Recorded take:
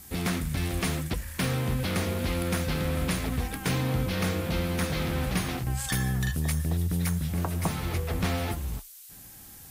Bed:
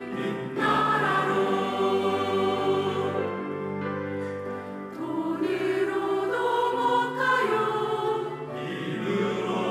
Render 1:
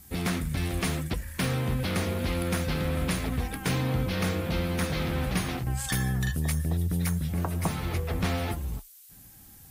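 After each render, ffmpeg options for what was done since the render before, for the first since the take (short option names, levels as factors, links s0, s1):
-af "afftdn=nr=6:nf=-48"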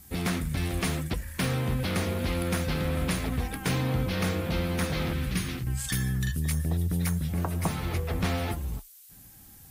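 -filter_complex "[0:a]asettb=1/sr,asplit=3[s0][s1][s2];[s0]atrim=end=5.134[s3];[s1]atrim=start=5.13:end=6.51,asetpts=PTS-STARTPTS,afade=t=in:d=0.004:c=qsin,afade=t=out:st=1.376:d=0.004:c=qsin,equalizer=f=730:t=o:w=1.2:g=-13.5[s4];[s2]atrim=start=6.506[s5];[s3][s4]acrossfade=d=0.004:c1=hsin:c2=qsin[s6];[s6][s5]acrossfade=d=0.004:c1=qsin:c2=hsin"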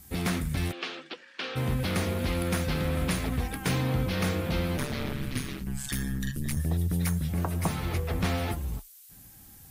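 -filter_complex "[0:a]asplit=3[s0][s1][s2];[s0]afade=t=out:st=0.71:d=0.02[s3];[s1]highpass=f=370:w=0.5412,highpass=f=370:w=1.3066,equalizer=f=430:t=q:w=4:g=-5,equalizer=f=660:t=q:w=4:g=-9,equalizer=f=980:t=q:w=4:g=-7,equalizer=f=2000:t=q:w=4:g=-6,equalizer=f=2900:t=q:w=4:g=3,lowpass=f=4500:w=0.5412,lowpass=f=4500:w=1.3066,afade=t=in:st=0.71:d=0.02,afade=t=out:st=1.55:d=0.02[s4];[s2]afade=t=in:st=1.55:d=0.02[s5];[s3][s4][s5]amix=inputs=3:normalize=0,asettb=1/sr,asplit=3[s6][s7][s8];[s6]atrim=end=4.774[s9];[s7]atrim=start=4.77:end=6.57,asetpts=PTS-STARTPTS,afade=t=in:d=0.004:c=qsin,afade=t=out:st=1.796:d=0.004:c=qsin,aeval=exprs='val(0)*sin(2*PI*68*n/s)':c=same[s10];[s8]atrim=start=6.566[s11];[s9][s10]acrossfade=d=0.004:c1=hsin:c2=qsin[s12];[s12][s11]acrossfade=d=0.004:c1=qsin:c2=hsin"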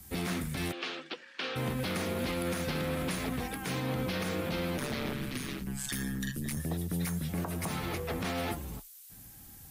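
-filter_complex "[0:a]acrossover=split=150|820|2800[s0][s1][s2][s3];[s0]acompressor=threshold=0.00631:ratio=4[s4];[s4][s1][s2][s3]amix=inputs=4:normalize=0,alimiter=limit=0.0631:level=0:latency=1:release=59"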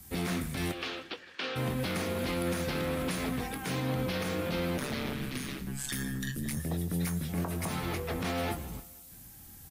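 -filter_complex "[0:a]asplit=2[s0][s1];[s1]adelay=23,volume=0.251[s2];[s0][s2]amix=inputs=2:normalize=0,aecho=1:1:159|318|477|636:0.112|0.0595|0.0315|0.0167"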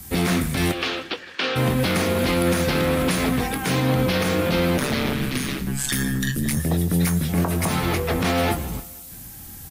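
-af "volume=3.76"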